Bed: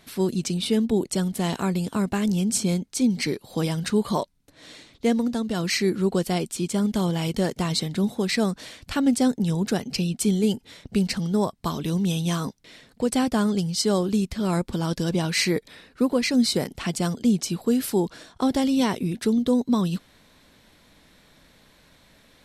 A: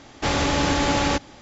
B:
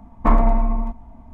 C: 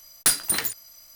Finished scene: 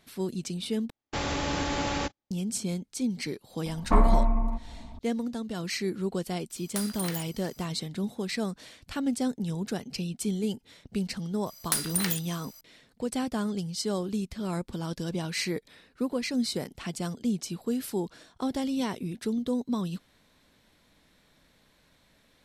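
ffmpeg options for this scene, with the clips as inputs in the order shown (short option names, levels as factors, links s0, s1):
-filter_complex "[3:a]asplit=2[s0][s1];[0:a]volume=0.398[s2];[1:a]agate=range=0.0141:threshold=0.0224:ratio=16:release=100:detection=peak[s3];[2:a]acompressor=mode=upward:threshold=0.0316:ratio=2.5:attack=3.2:release=140:knee=2.83:detection=peak[s4];[s0]acompressor=threshold=0.0631:ratio=6:attack=3.2:release=140:knee=1:detection=peak[s5];[s1]acompressor=threshold=0.0447:ratio=3:attack=56:release=97:knee=1:detection=rms[s6];[s2]asplit=2[s7][s8];[s7]atrim=end=0.904[s9];[s3]atrim=end=1.41,asetpts=PTS-STARTPTS,volume=0.376[s10];[s8]atrim=start=2.306[s11];[s4]atrim=end=1.33,asetpts=PTS-STARTPTS,volume=0.562,afade=t=in:d=0.004:c=hsin,afade=t=out:st=1.326:d=0.004:c=hsin,adelay=3660[s12];[s5]atrim=end=1.15,asetpts=PTS-STARTPTS,volume=0.473,afade=t=in:d=0.004:c=hsin,afade=t=out:st=1.146:d=0.004:c=hsin,adelay=286650S[s13];[s6]atrim=end=1.15,asetpts=PTS-STARTPTS,volume=0.794,afade=t=in:d=0.004:c=hsin,afade=t=out:st=1.146:d=0.004:c=hsin,adelay=505386S[s14];[s9][s10]acrossfade=d=0.004:c1=hsin:c2=hsin[s15];[s15][s11]acrossfade=d=0.004:c1=hsin:c2=hsin[s16];[s16][s12][s13][s14]amix=inputs=4:normalize=0"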